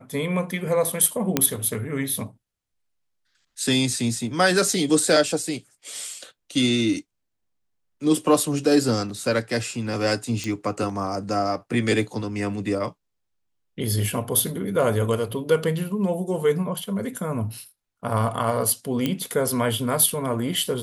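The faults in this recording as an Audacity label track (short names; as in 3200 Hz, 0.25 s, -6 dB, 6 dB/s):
1.370000	1.370000	pop -3 dBFS
10.440000	10.440000	pop -15 dBFS
19.060000	19.060000	pop -10 dBFS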